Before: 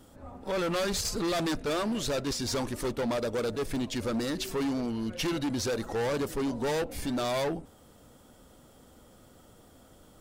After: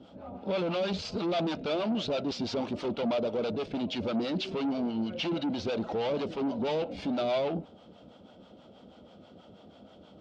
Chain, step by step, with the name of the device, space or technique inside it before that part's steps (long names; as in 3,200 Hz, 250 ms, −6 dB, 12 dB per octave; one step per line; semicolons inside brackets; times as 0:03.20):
guitar amplifier with harmonic tremolo (two-band tremolo in antiphase 6.2 Hz, depth 70%, crossover 580 Hz; soft clipping −33.5 dBFS, distortion −12 dB; loudspeaker in its box 110–4,200 Hz, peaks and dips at 130 Hz −6 dB, 190 Hz +6 dB, 640 Hz +5 dB, 1,100 Hz −5 dB, 1,800 Hz −10 dB, 3,000 Hz +3 dB)
level +6.5 dB